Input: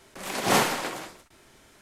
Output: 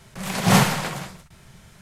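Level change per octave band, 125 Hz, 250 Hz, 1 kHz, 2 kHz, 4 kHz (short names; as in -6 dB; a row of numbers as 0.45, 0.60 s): +16.0, +9.5, +3.0, +3.5, +3.5 dB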